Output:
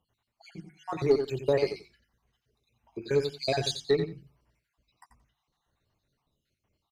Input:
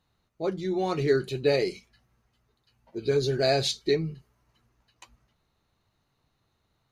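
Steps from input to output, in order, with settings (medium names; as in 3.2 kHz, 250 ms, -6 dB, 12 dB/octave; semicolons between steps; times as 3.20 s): random holes in the spectrogram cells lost 57%; band-stop 1.3 kHz, Q 15; Chebyshev shaper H 2 -18 dB, 4 -34 dB, 7 -33 dB, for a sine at -12.5 dBFS; hum notches 50/100/150/200/250/300/350 Hz; feedback delay 88 ms, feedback 15%, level -8.5 dB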